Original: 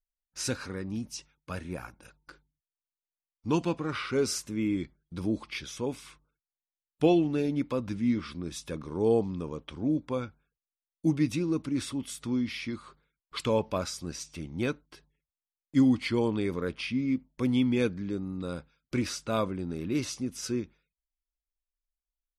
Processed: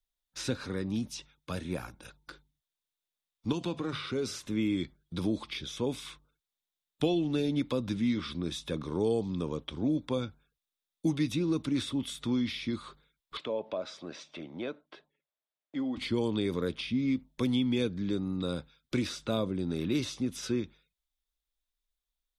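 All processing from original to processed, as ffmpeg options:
ffmpeg -i in.wav -filter_complex "[0:a]asettb=1/sr,asplit=3[link_01][link_02][link_03];[link_01]atrim=end=3.524[link_04];[link_02]atrim=start=3.52:end=4.46,asetpts=PTS-STARTPTS,afade=type=in:duration=0.004:curve=qsin,afade=type=out:start_time=0.936:duration=0.004:curve=qsin,bandreject=frequency=50:width_type=h:width=6,bandreject=frequency=100:width_type=h:width=6,bandreject=frequency=150:width_type=h:width=6,acompressor=threshold=-33dB:ratio=2.5:attack=3.2:release=140:knee=1:detection=peak[link_05];[link_03]atrim=start=4.456[link_06];[link_04][link_05]acrossfade=duration=0.004:curve1=hsin:curve2=qsin[link_07];[link_07][link_06]acrossfade=duration=0.004:curve1=qsin:curve2=hsin,asettb=1/sr,asplit=3[link_08][link_09][link_10];[link_08]atrim=end=13.374[link_11];[link_09]atrim=start=13.37:end=15.97,asetpts=PTS-STARTPTS,afade=type=in:duration=0.004:curve=qsin,afade=type=out:start_time=2.596:duration=0.004:curve=qsin,highpass=300,lowpass=2500,acompressor=threshold=-41dB:ratio=2:attack=3.2:release=140:knee=1:detection=peak,equalizer=frequency=630:width=4:gain=9[link_12];[link_10]atrim=start=15.966[link_13];[link_11][link_12]acrossfade=duration=0.004:curve1=hsin:curve2=qsin[link_14];[link_14][link_13]acrossfade=duration=0.004:curve1=qsin:curve2=hsin,equalizer=frequency=3600:width_type=o:width=0.3:gain=10.5,acrossover=split=110|620|3600[link_15][link_16][link_17][link_18];[link_15]acompressor=threshold=-49dB:ratio=4[link_19];[link_16]acompressor=threshold=-30dB:ratio=4[link_20];[link_17]acompressor=threshold=-45dB:ratio=4[link_21];[link_18]acompressor=threshold=-47dB:ratio=4[link_22];[link_19][link_20][link_21][link_22]amix=inputs=4:normalize=0,volume=3dB" out.wav

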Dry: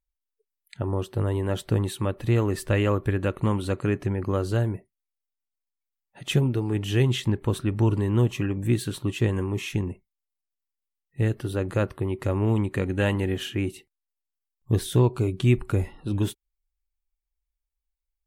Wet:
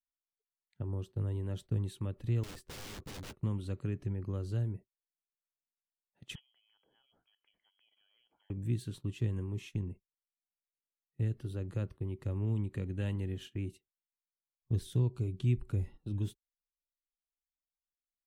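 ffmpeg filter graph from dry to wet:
ffmpeg -i in.wav -filter_complex "[0:a]asettb=1/sr,asplit=3[link_01][link_02][link_03];[link_01]atrim=end=2.434[link_04];[link_02]atrim=start=2.43:end=3.37,asetpts=PTS-STARTPTS,afade=type=in:duration=0.004:curve=qsin,afade=type=out:start_time=0.936:duration=0.004:curve=qsin,aeval=exprs='(mod(21.1*val(0)+1,2)-1)/21.1':channel_layout=same,asplit=2[link_05][link_06];[link_06]adelay=14,volume=-13dB[link_07];[link_05][link_07]amix=inputs=2:normalize=0,atrim=end_sample=41454[link_08];[link_03]atrim=start=3.366[link_09];[link_04][link_08]acrossfade=duration=0.004:curve1=hsin:curve2=qsin[link_10];[link_10][link_09]acrossfade=duration=0.004:curve1=qsin:curve2=hsin,asettb=1/sr,asplit=3[link_11][link_12][link_13];[link_11]atrim=end=6.354[link_14];[link_12]atrim=start=6.35:end=8.5,asetpts=PTS-STARTPTS,afade=type=in:duration=0.004:curve=qsin,afade=type=out:start_time=2.146:duration=0.004:curve=qsin,highpass=frequency=1300:poles=1,acompressor=threshold=-41dB:ratio=3:attack=3.2:release=140:knee=1:detection=peak,lowpass=frequency=2900:width_type=q:width=0.5098,lowpass=frequency=2900:width_type=q:width=0.6013,lowpass=frequency=2900:width_type=q:width=0.9,lowpass=frequency=2900:width_type=q:width=2.563,afreqshift=-3400[link_15];[link_13]atrim=start=8.496[link_16];[link_14][link_15]acrossfade=duration=0.004:curve1=hsin:curve2=qsin[link_17];[link_17][link_16]acrossfade=duration=0.004:curve1=qsin:curve2=hsin,firequalizer=gain_entry='entry(460,0);entry(670,-4);entry(12000,-11)':delay=0.05:min_phase=1,acrossover=split=200|3000[link_18][link_19][link_20];[link_19]acompressor=threshold=-52dB:ratio=1.5[link_21];[link_18][link_21][link_20]amix=inputs=3:normalize=0,agate=range=-17dB:threshold=-39dB:ratio=16:detection=peak,volume=-7.5dB" out.wav

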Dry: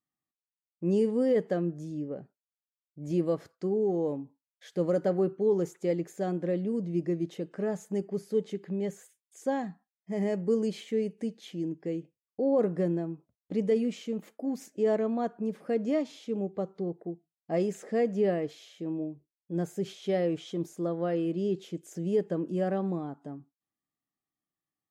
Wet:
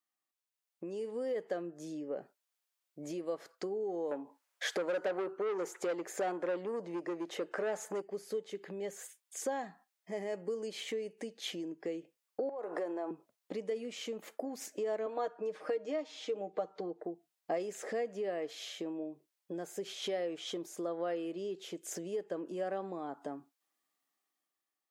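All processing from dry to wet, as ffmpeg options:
ffmpeg -i in.wav -filter_complex "[0:a]asettb=1/sr,asplit=3[link_01][link_02][link_03];[link_01]atrim=end=4.114[link_04];[link_02]atrim=start=4.11:end=8.02,asetpts=PTS-STARTPTS,afade=type=in:duration=0.004:curve=qsin,afade=type=out:start_time=3.906:duration=0.004:curve=qsin,equalizer=frequency=3400:width=0.74:gain=-6,asplit=2[link_05][link_06];[link_06]highpass=frequency=720:poles=1,volume=19dB,asoftclip=type=tanh:threshold=-17.5dB[link_07];[link_05][link_07]amix=inputs=2:normalize=0,lowpass=frequency=3500:poles=1,volume=-6dB[link_08];[link_03]atrim=start=8.016[link_09];[link_04][link_08]acrossfade=duration=0.004:curve1=hsin:curve2=qsin[link_10];[link_10][link_09]acrossfade=duration=0.004:curve1=qsin:curve2=hsin,asettb=1/sr,asplit=3[link_11][link_12][link_13];[link_11]atrim=end=12.494[link_14];[link_12]atrim=start=12.49:end=13.11,asetpts=PTS-STARTPTS,afade=type=in:duration=0.004:curve=qsin,afade=type=out:start_time=0.616:duration=0.004:curve=qsin,highpass=frequency=250:width=0.5412,highpass=frequency=250:width=1.3066,equalizer=frequency=900:width=1.1:gain=11.5,acompressor=threshold=-34dB:ratio=10:attack=3.2:release=140:knee=1:detection=peak[link_15];[link_13]atrim=start=13.106[link_16];[link_14][link_15]acrossfade=duration=0.004:curve1=hsin:curve2=qsin[link_17];[link_17][link_16]acrossfade=duration=0.004:curve1=qsin:curve2=hsin,asettb=1/sr,asplit=3[link_18][link_19][link_20];[link_18]atrim=end=15.064[link_21];[link_19]atrim=start=15.06:end=17.05,asetpts=PTS-STARTPTS,afade=type=in:duration=0.004:curve=qsin,afade=type=out:start_time=1.986:duration=0.004:curve=qsin,highpass=200,lowpass=6900,aecho=1:1:6.5:0.65,atrim=end_sample=87759[link_22];[link_20]atrim=start=17.046[link_23];[link_21][link_22]acrossfade=duration=0.004:curve1=hsin:curve2=qsin[link_24];[link_24][link_23]acrossfade=duration=0.004:curve1=qsin:curve2=hsin,acompressor=threshold=-39dB:ratio=8,highpass=470,dynaudnorm=framelen=180:gausssize=9:maxgain=7.5dB,volume=2dB" out.wav

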